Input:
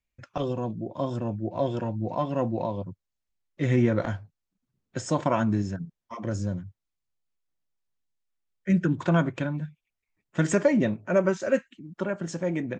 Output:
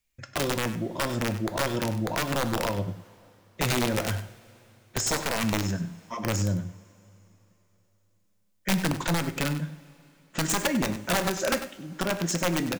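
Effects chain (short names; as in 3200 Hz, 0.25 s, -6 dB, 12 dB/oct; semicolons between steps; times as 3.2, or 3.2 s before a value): high shelf 3300 Hz +11 dB; compressor 12:1, threshold -24 dBFS, peak gain reduction 10 dB; wrapped overs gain 21 dB; on a send: echo 98 ms -13 dB; on the sum: two-slope reverb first 0.49 s, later 3.5 s, from -18 dB, DRR 10 dB; gain +2.5 dB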